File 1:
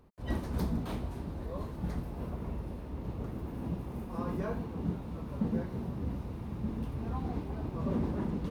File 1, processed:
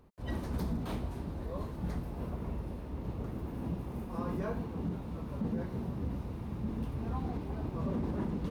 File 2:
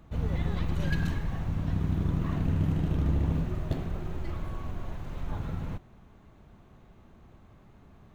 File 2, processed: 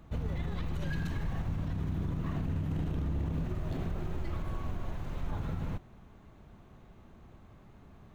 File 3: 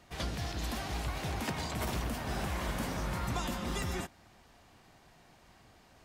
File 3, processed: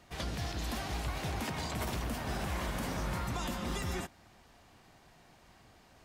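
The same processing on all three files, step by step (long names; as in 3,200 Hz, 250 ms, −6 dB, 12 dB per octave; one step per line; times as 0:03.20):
brickwall limiter −26 dBFS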